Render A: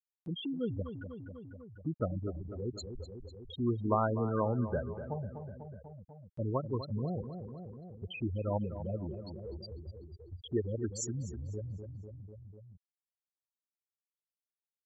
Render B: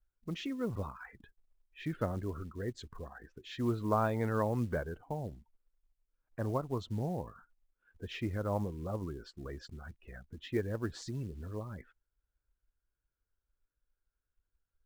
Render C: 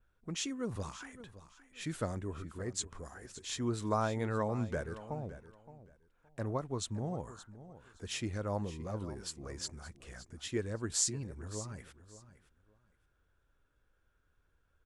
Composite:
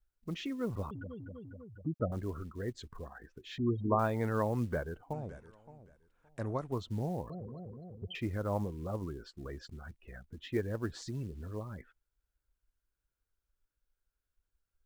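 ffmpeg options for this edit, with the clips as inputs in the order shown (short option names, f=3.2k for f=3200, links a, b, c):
-filter_complex "[0:a]asplit=3[a][b][c];[1:a]asplit=5[d][e][f][g][h];[d]atrim=end=0.912[i];[a]atrim=start=0.908:end=2.122[j];[e]atrim=start=2.118:end=3.582[k];[b]atrim=start=3.578:end=3.992[l];[f]atrim=start=3.988:end=5.132[m];[2:a]atrim=start=5.128:end=6.722[n];[g]atrim=start=6.718:end=7.302[o];[c]atrim=start=7.298:end=8.152[p];[h]atrim=start=8.148[q];[i][j]acrossfade=d=0.004:c1=hsin:c2=hsin[r];[r][k]acrossfade=d=0.004:c1=hsin:c2=hsin[s];[s][l]acrossfade=d=0.004:c1=hsin:c2=hsin[t];[t][m]acrossfade=d=0.004:c1=hsin:c2=hsin[u];[u][n]acrossfade=d=0.004:c1=hsin:c2=hsin[v];[v][o]acrossfade=d=0.004:c1=hsin:c2=hsin[w];[w][p]acrossfade=d=0.004:c1=hsin:c2=hsin[x];[x][q]acrossfade=d=0.004:c1=hsin:c2=hsin"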